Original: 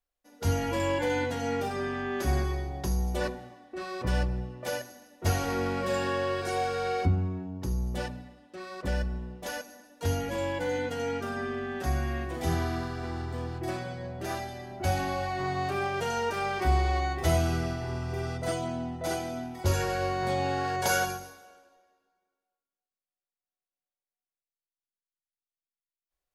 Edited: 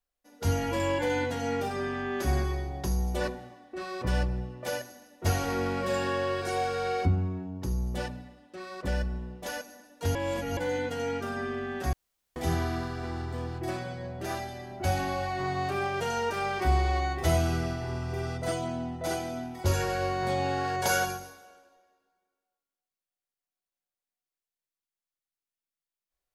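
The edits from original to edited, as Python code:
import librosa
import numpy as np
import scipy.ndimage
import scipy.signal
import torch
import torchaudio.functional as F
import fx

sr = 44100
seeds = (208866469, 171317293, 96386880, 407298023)

y = fx.edit(x, sr, fx.reverse_span(start_s=10.15, length_s=0.42),
    fx.room_tone_fill(start_s=11.93, length_s=0.43), tone=tone)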